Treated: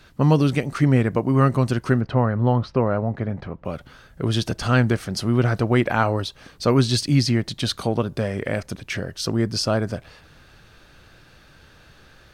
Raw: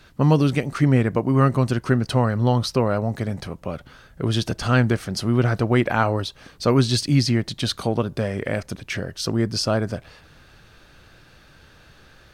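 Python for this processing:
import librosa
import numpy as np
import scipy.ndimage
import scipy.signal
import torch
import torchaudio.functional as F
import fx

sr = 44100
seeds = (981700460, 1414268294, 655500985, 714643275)

y = fx.lowpass(x, sr, hz=2000.0, slope=12, at=(2.0, 3.64), fade=0.02)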